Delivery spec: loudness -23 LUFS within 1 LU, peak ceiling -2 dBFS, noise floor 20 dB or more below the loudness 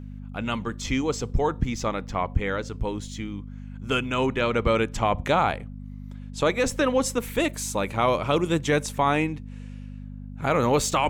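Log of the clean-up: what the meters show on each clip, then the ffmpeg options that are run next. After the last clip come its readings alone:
hum 50 Hz; highest harmonic 250 Hz; hum level -35 dBFS; loudness -25.5 LUFS; peak level -10.5 dBFS; loudness target -23.0 LUFS
-> -af "bandreject=f=50:t=h:w=4,bandreject=f=100:t=h:w=4,bandreject=f=150:t=h:w=4,bandreject=f=200:t=h:w=4,bandreject=f=250:t=h:w=4"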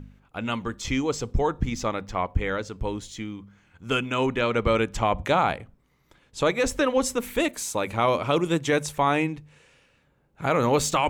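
hum not found; loudness -25.5 LUFS; peak level -11.0 dBFS; loudness target -23.0 LUFS
-> -af "volume=1.33"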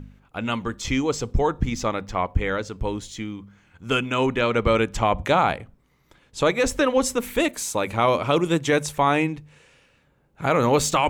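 loudness -23.0 LUFS; peak level -8.5 dBFS; noise floor -63 dBFS

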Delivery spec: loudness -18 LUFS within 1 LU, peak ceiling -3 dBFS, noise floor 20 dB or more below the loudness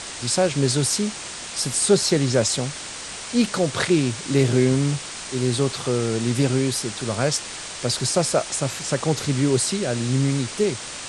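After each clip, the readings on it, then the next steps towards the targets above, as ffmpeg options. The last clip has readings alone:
noise floor -34 dBFS; noise floor target -42 dBFS; loudness -22.0 LUFS; peak level -4.5 dBFS; loudness target -18.0 LUFS
-> -af "afftdn=nr=8:nf=-34"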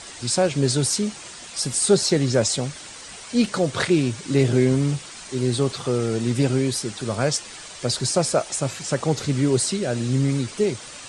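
noise floor -40 dBFS; noise floor target -43 dBFS
-> -af "afftdn=nr=6:nf=-40"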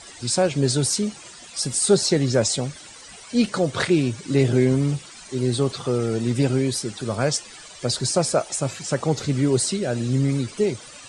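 noise floor -43 dBFS; loudness -22.5 LUFS; peak level -5.0 dBFS; loudness target -18.0 LUFS
-> -af "volume=1.68,alimiter=limit=0.708:level=0:latency=1"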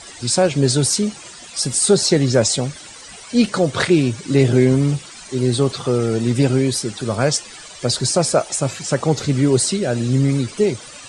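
loudness -18.0 LUFS; peak level -3.0 dBFS; noise floor -39 dBFS

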